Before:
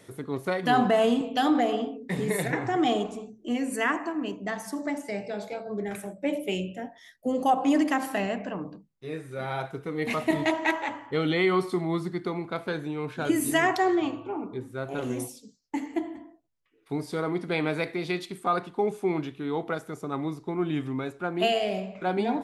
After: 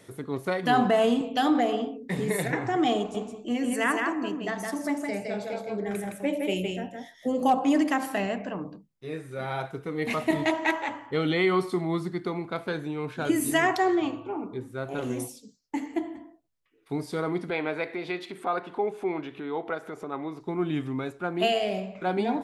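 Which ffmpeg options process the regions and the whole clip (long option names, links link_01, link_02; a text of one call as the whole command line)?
ffmpeg -i in.wav -filter_complex "[0:a]asettb=1/sr,asplit=3[link_01][link_02][link_03];[link_01]atrim=end=2.984[link_04];[link_02]atrim=start=2.98:end=7.59,asetpts=PTS-STARTPTS,afade=type=in:duration=0.004:curve=qsin,afade=type=out:start_time=4.606:duration=0.004:curve=qsin,asoftclip=type=hard:threshold=-14.5dB,aecho=1:1:164:0.668,atrim=end_sample=203301[link_05];[link_03]atrim=start=7.586[link_06];[link_04][link_05]acrossfade=duration=0.004:curve1=hsin:curve2=qsin[link_07];[link_07][link_06]acrossfade=duration=0.004:curve1=qsin:curve2=hsin,asettb=1/sr,asplit=3[link_08][link_09][link_10];[link_08]atrim=end=17.504[link_11];[link_09]atrim=start=17.5:end=20.41,asetpts=PTS-STARTPTS,afade=type=in:duration=0.004:curve=qsin,afade=type=out:start_time=2.906:duration=0.004:curve=qsin,bass=frequency=250:gain=-12,treble=frequency=4000:gain=-13,bandreject=frequency=1200:width=20,acompressor=mode=upward:threshold=-31dB:ratio=2.5:attack=3.2:release=140:knee=2.83:detection=peak[link_12];[link_10]atrim=start=20.406[link_13];[link_11][link_12]acrossfade=duration=0.004:curve1=hsin:curve2=qsin[link_14];[link_14][link_13]acrossfade=duration=0.004:curve1=qsin:curve2=hsin" out.wav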